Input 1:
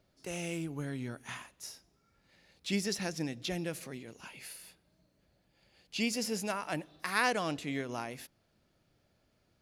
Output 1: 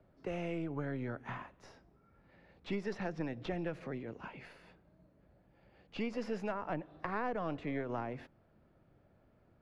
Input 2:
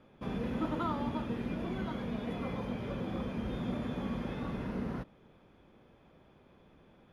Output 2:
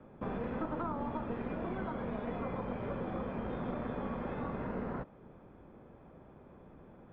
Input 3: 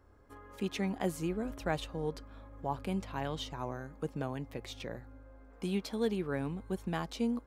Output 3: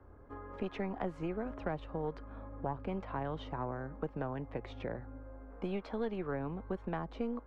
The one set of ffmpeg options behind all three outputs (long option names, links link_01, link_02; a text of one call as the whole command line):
ffmpeg -i in.wav -filter_complex "[0:a]aeval=exprs='0.168*(cos(1*acos(clip(val(0)/0.168,-1,1)))-cos(1*PI/2))+0.0119*(cos(6*acos(clip(val(0)/0.168,-1,1)))-cos(6*PI/2))':channel_layout=same,lowpass=1400,acrossover=split=93|410|1100[link_01][link_02][link_03][link_04];[link_01]acompressor=threshold=-54dB:ratio=4[link_05];[link_02]acompressor=threshold=-48dB:ratio=4[link_06];[link_03]acompressor=threshold=-46dB:ratio=4[link_07];[link_04]acompressor=threshold=-52dB:ratio=4[link_08];[link_05][link_06][link_07][link_08]amix=inputs=4:normalize=0,volume=6dB" out.wav